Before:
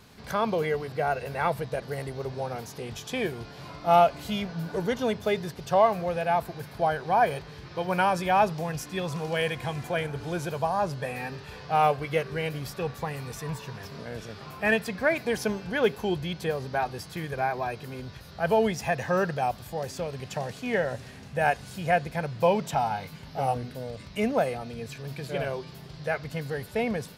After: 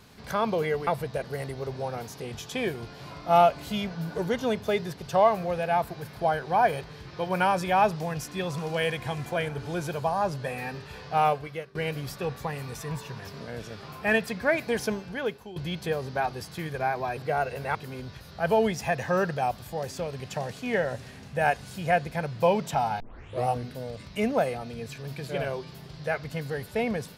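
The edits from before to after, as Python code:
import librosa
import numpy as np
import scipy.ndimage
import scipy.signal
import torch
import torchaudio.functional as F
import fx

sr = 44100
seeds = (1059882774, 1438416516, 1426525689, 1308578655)

y = fx.edit(x, sr, fx.move(start_s=0.87, length_s=0.58, to_s=17.75),
    fx.fade_out_to(start_s=11.76, length_s=0.57, floor_db=-22.0),
    fx.fade_out_to(start_s=15.4, length_s=0.74, floor_db=-18.5),
    fx.tape_start(start_s=23.0, length_s=0.47), tone=tone)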